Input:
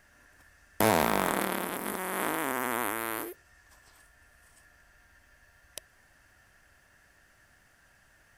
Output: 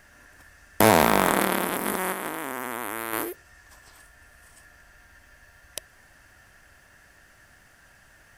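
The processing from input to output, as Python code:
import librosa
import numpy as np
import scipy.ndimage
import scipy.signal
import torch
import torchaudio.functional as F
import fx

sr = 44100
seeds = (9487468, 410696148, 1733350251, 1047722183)

y = fx.level_steps(x, sr, step_db=10, at=(2.12, 3.13))
y = F.gain(torch.from_numpy(y), 7.0).numpy()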